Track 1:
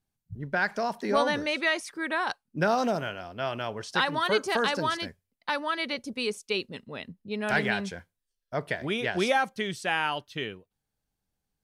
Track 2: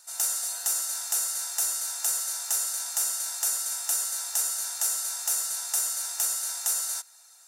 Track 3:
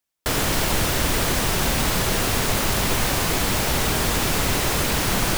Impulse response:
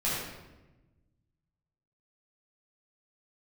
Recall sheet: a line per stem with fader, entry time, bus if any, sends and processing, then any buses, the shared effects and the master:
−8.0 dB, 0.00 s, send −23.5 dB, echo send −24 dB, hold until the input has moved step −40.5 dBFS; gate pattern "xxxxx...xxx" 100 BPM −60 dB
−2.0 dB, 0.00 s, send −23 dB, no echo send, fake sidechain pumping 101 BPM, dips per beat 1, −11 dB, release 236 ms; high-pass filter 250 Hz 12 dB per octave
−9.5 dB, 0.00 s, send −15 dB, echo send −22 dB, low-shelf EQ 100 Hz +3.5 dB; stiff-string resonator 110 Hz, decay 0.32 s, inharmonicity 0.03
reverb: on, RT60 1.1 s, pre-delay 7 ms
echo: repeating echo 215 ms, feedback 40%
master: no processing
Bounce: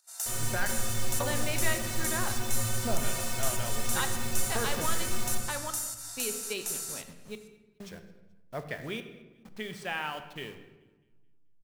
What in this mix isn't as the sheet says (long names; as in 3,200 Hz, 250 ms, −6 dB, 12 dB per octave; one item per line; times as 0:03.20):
stem 2 −2.0 dB → −8.5 dB
reverb return +8.0 dB